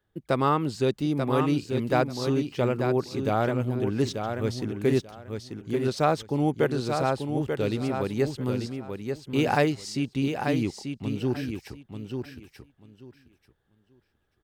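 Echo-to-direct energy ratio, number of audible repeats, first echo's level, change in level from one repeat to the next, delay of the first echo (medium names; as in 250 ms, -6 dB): -6.0 dB, 3, -6.0 dB, -14.5 dB, 888 ms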